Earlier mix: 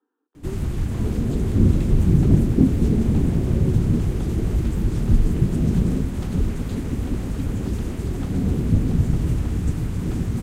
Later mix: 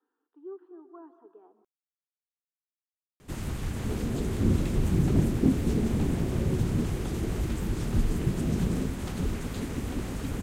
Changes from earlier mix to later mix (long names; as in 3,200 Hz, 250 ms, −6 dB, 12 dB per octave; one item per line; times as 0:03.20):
background: entry +2.85 s
master: add low-shelf EQ 370 Hz −9.5 dB